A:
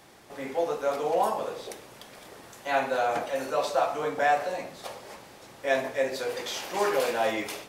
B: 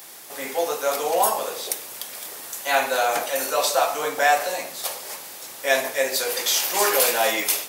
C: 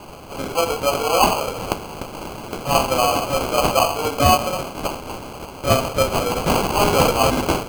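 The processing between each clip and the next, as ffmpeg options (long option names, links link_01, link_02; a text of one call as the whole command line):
ffmpeg -i in.wav -af "aemphasis=mode=production:type=riaa,volume=5.5dB" out.wav
ffmpeg -i in.wav -af "asuperstop=centerf=1300:order=20:qfactor=3.1,acrusher=samples=24:mix=1:aa=0.000001,volume=4dB" out.wav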